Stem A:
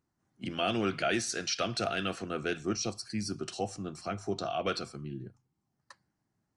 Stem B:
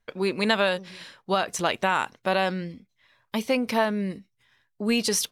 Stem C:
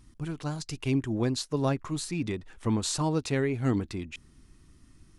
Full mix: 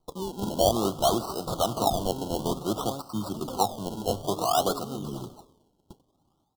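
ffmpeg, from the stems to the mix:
-filter_complex "[0:a]equalizer=f=820:t=o:w=0.56:g=14.5,volume=2.5dB,asplit=3[a][b][c];[b]volume=-23dB[d];[1:a]acompressor=threshold=-32dB:ratio=3,volume=0dB,asplit=2[e][f];[f]volume=-17dB[g];[2:a]highpass=f=270:p=1,adelay=1250,volume=-7.5dB,asplit=2[h][i];[i]volume=-18dB[j];[c]apad=whole_len=234480[k];[e][k]sidechaincompress=threshold=-34dB:ratio=3:attack=9.9:release=1260[l];[d][g][j]amix=inputs=3:normalize=0,aecho=0:1:92|184|276|368|460|552|644|736:1|0.53|0.281|0.149|0.0789|0.0418|0.0222|0.0117[m];[a][l][h][m]amix=inputs=4:normalize=0,lowpass=8.5k,acrusher=samples=25:mix=1:aa=0.000001:lfo=1:lforange=25:lforate=0.56,asuperstop=centerf=2000:order=12:qfactor=1.2"

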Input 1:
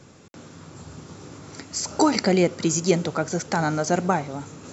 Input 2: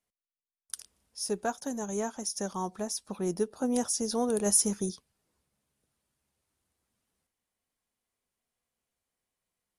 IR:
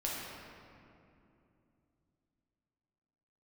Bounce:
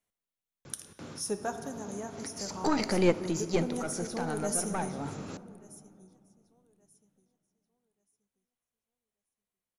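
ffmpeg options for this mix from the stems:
-filter_complex "[0:a]lowpass=5.8k,aeval=exprs='(tanh(3.16*val(0)+0.55)-tanh(0.55))/3.16':c=same,adelay=650,volume=1.5dB,asplit=2[a][b];[b]volume=-23dB[c];[1:a]equalizer=f=4.8k:w=7.9:g=-9.5,volume=-2.5dB,afade=t=out:st=1.18:d=0.62:silence=0.421697,asplit=4[d][e][f][g];[e]volume=-7.5dB[h];[f]volume=-18.5dB[i];[g]apad=whole_len=236881[j];[a][j]sidechaincompress=threshold=-51dB:ratio=5:attack=38:release=250[k];[2:a]atrim=start_sample=2205[l];[c][h]amix=inputs=2:normalize=0[m];[m][l]afir=irnorm=-1:irlink=0[n];[i]aecho=0:1:1181|2362|3543|4724:1|0.24|0.0576|0.0138[o];[k][d][n][o]amix=inputs=4:normalize=0"

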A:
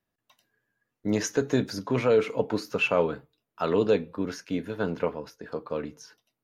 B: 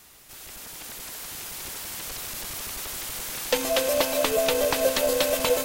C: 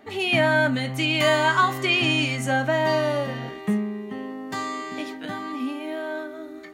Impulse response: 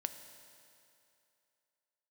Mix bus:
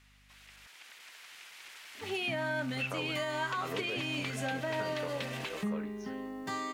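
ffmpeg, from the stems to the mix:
-filter_complex "[0:a]equalizer=f=1.7k:t=o:w=1.8:g=10.5,aeval=exprs='val(0)+0.00282*(sin(2*PI*50*n/s)+sin(2*PI*2*50*n/s)/2+sin(2*PI*3*50*n/s)/3+sin(2*PI*4*50*n/s)/4+sin(2*PI*5*50*n/s)/5)':c=same,volume=-12dB,asplit=3[a][b][c];[a]atrim=end=0.67,asetpts=PTS-STARTPTS,afade=t=out:st=0.666:d=0.004:c=hsin[d];[b]atrim=start=0.67:end=2.77,asetpts=PTS-STARTPTS,volume=0[e];[c]atrim=start=2.77,asetpts=PTS-STARTPTS,afade=t=in:d=0.004:c=hsin[f];[d][e][f]concat=n=3:v=0:a=1[g];[1:a]bandpass=f=2.2k:t=q:w=1.4:csg=0,volume=-5.5dB[h];[2:a]acrusher=bits=9:mix=0:aa=0.000001,adelay=1950,volume=-7dB[i];[g][h][i]amix=inputs=3:normalize=0,alimiter=level_in=1dB:limit=-24dB:level=0:latency=1:release=365,volume=-1dB"

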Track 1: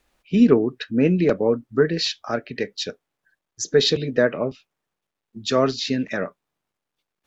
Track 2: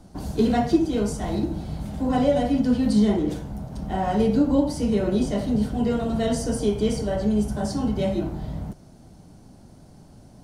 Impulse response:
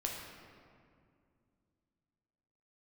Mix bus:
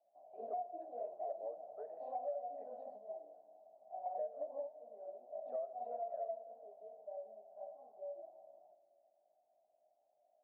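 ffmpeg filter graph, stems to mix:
-filter_complex "[0:a]highpass=f=390:w=0.5412,highpass=f=390:w=1.3066,lowpass=3.9k,volume=-7.5dB,asplit=3[a][b][c];[a]atrim=end=2.85,asetpts=PTS-STARTPTS,afade=t=out:st=2.846:d=0.004:c=hsin[d];[b]atrim=start=2.85:end=4.05,asetpts=PTS-STARTPTS,volume=0[e];[c]atrim=start=4.05,asetpts=PTS-STARTPTS,afade=t=in:d=0.004:c=hsin[f];[d][e][f]concat=n=3:v=0:a=1,asplit=3[g][h][i];[h]volume=-13.5dB[j];[1:a]flanger=delay=15.5:depth=2.3:speed=1.3,volume=0.5dB,asplit=2[k][l];[l]volume=-22dB[m];[i]apad=whole_len=460296[n];[k][n]sidechaingate=range=-12dB:threshold=-56dB:ratio=16:detection=peak[o];[2:a]atrim=start_sample=2205[p];[j][m]amix=inputs=2:normalize=0[q];[q][p]afir=irnorm=-1:irlink=0[r];[g][o][r]amix=inputs=3:normalize=0,asuperpass=centerf=660:order=4:qfactor=5.1,acompressor=threshold=-39dB:ratio=6"

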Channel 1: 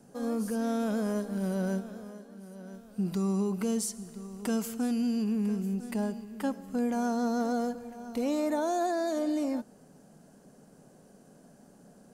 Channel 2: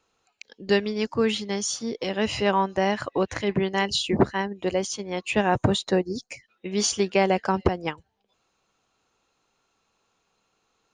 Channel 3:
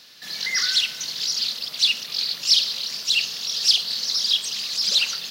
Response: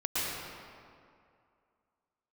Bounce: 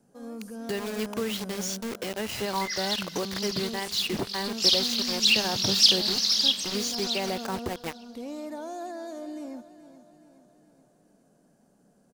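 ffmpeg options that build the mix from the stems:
-filter_complex "[0:a]volume=-8dB,asplit=2[a][b];[b]volume=-14.5dB[c];[1:a]highpass=f=48:p=1,acrusher=bits=4:mix=0:aa=0.000001,volume=-5dB[d];[2:a]adelay=2150,volume=-0.5dB,afade=t=in:st=4.47:d=0.44:silence=0.316228,afade=t=out:st=6.34:d=0.58:silence=0.298538,asplit=2[e][f];[f]volume=-21.5dB[g];[a][d]amix=inputs=2:normalize=0,alimiter=limit=-20.5dB:level=0:latency=1:release=56,volume=0dB[h];[c][g]amix=inputs=2:normalize=0,aecho=0:1:424|848|1272|1696|2120|2544|2968|3392:1|0.53|0.281|0.149|0.0789|0.0418|0.0222|0.0117[i];[e][h][i]amix=inputs=3:normalize=0"

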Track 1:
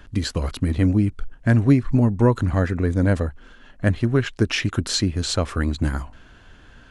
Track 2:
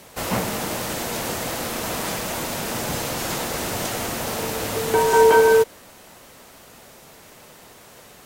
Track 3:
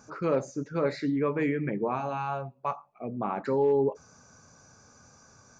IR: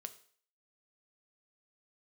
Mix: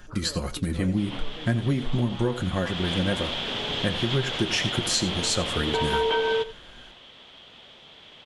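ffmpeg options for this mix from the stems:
-filter_complex "[0:a]highshelf=f=5.9k:g=8.5,aecho=1:1:5.6:0.56,flanger=delay=7.6:depth=5:regen=63:speed=1.9:shape=sinusoidal,volume=0.5dB,asplit=2[a][b];[b]volume=-15dB[c];[1:a]lowpass=f=3.3k:t=q:w=9.5,adelay=800,volume=-7dB,afade=t=in:st=2.62:d=0.33:silence=0.334965,asplit=2[d][e];[e]volume=-18dB[f];[2:a]acompressor=threshold=-36dB:ratio=6,volume=-4.5dB[g];[c][f]amix=inputs=2:normalize=0,aecho=0:1:86:1[h];[a][d][g][h]amix=inputs=4:normalize=0,acompressor=threshold=-20dB:ratio=6"

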